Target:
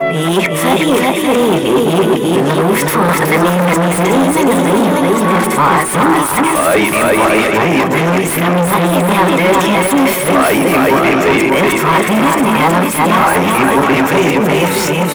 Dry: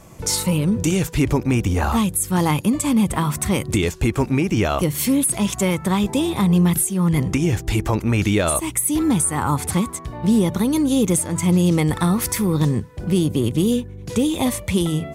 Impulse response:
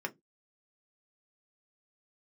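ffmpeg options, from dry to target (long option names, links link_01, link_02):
-filter_complex "[0:a]areverse,aecho=1:1:370|592|725.2|805.1|853.1:0.631|0.398|0.251|0.158|0.1,asplit=2[link_01][link_02];[1:a]atrim=start_sample=2205,highshelf=frequency=5200:gain=11[link_03];[link_02][link_03]afir=irnorm=-1:irlink=0,volume=-5dB[link_04];[link_01][link_04]amix=inputs=2:normalize=0,acontrast=71,asoftclip=type=hard:threshold=-8.5dB,alimiter=limit=-12.5dB:level=0:latency=1:release=325,highpass=200,equalizer=frequency=4600:width=1.1:gain=-6,asplit=2[link_05][link_06];[link_06]highpass=frequency=720:poles=1,volume=15dB,asoftclip=type=tanh:threshold=-6dB[link_07];[link_05][link_07]amix=inputs=2:normalize=0,lowpass=frequency=3700:poles=1,volume=-6dB,adynamicequalizer=threshold=0.0158:dfrequency=7700:dqfactor=0.74:tfrequency=7700:tqfactor=0.74:attack=5:release=100:ratio=0.375:range=3.5:mode=cutabove:tftype=bell,volume=5.5dB"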